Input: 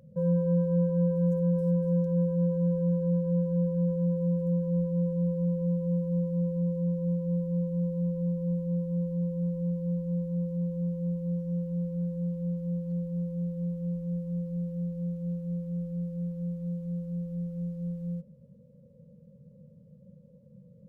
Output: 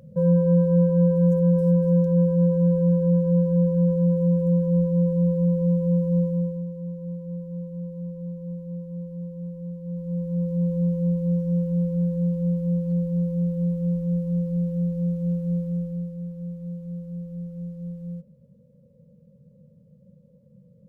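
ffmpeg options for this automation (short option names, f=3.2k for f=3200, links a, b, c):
-af "volume=19dB,afade=t=out:st=6.21:d=0.45:silence=0.281838,afade=t=in:st=9.83:d=0.89:silence=0.251189,afade=t=out:st=15.57:d=0.6:silence=0.398107"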